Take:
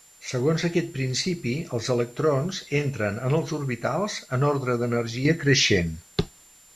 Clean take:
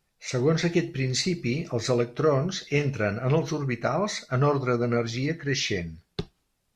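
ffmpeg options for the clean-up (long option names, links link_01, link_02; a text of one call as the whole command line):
ffmpeg -i in.wav -af "bandreject=frequency=7200:width=30,agate=range=-21dB:threshold=-45dB,asetnsamples=nb_out_samples=441:pad=0,asendcmd='5.25 volume volume -7.5dB',volume=0dB" out.wav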